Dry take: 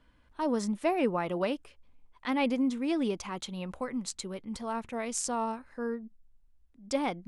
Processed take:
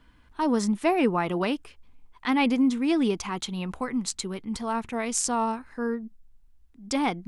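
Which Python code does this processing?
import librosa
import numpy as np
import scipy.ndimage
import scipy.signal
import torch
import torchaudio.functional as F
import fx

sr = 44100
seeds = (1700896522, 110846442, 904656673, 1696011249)

y = fx.peak_eq(x, sr, hz=560.0, db=-9.5, octaves=0.3)
y = y * librosa.db_to_amplitude(6.5)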